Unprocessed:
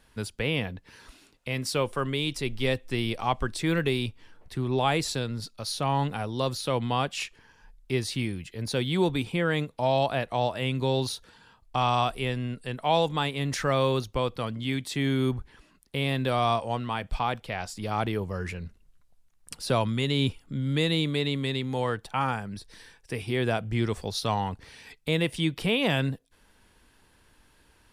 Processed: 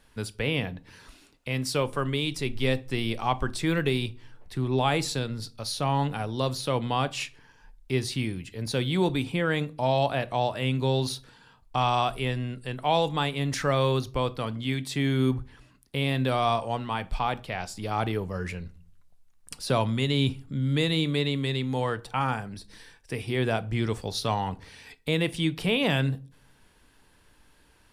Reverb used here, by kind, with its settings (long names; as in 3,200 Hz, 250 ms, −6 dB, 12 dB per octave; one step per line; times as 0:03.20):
rectangular room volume 310 cubic metres, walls furnished, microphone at 0.33 metres